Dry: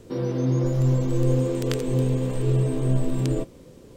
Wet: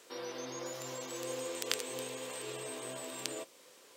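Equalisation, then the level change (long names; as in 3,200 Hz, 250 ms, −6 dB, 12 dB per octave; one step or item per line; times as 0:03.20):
high-pass filter 1,100 Hz 12 dB per octave
dynamic equaliser 1,400 Hz, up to −4 dB, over −59 dBFS, Q 0.85
+2.0 dB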